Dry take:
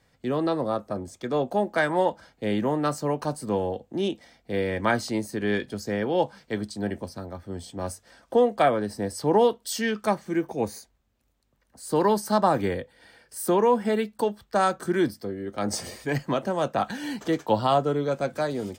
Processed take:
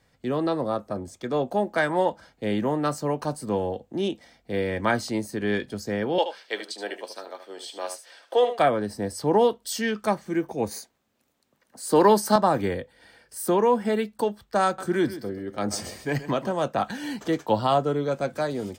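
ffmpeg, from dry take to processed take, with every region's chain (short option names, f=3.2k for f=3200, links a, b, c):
-filter_complex "[0:a]asettb=1/sr,asplit=3[a][b][c];[a]atrim=end=6.184[d];[b]atrim=start=6.18:end=8.59,asetpts=PTS-STARTPTS,afade=t=in:d=0.004:c=qsin,afade=t=out:st=2.406:d=0.004:c=qsin,highpass=f=390:w=0.5412,highpass=f=390:w=1.3066,equalizer=f=3.1k:w=0.97:g=9.5,aecho=1:1:75:0.316,atrim=end_sample=106281[e];[c]atrim=start=8.586[f];[d][e]acrossfade=d=0.004:c1=hsin:c2=qsin[g];[g][f]acrossfade=d=0.004:c1=qsin:c2=hsin,asettb=1/sr,asplit=3[h][i][j];[h]atrim=end=10.714[k];[i]atrim=start=10.71:end=12.36,asetpts=PTS-STARTPTS,afade=t=in:d=0.004:c=qsin,afade=t=out:st=1.646:d=0.004:c=qsin,highpass=190,acontrast=30[l];[j]atrim=start=12.356[m];[k][l]acrossfade=d=0.004:c1=hsin:c2=qsin[n];[n][m]acrossfade=d=0.004:c1=qsin:c2=hsin,asettb=1/sr,asplit=3[o][p][q];[o]atrim=end=14.654[r];[p]atrim=start=14.65:end=16.55,asetpts=PTS-STARTPTS,afade=t=in:d=0.004:c=qsin,afade=t=out:st=1.896:d=0.004:c=qsin,equalizer=f=11k:w=7.3:g=-9.5,aecho=1:1:131|262|393:0.2|0.0519|0.0135,atrim=end_sample=83790[s];[q]atrim=start=16.546[t];[r][s]acrossfade=d=0.004:c1=hsin:c2=qsin[u];[u][t]acrossfade=d=0.004:c1=qsin:c2=hsin"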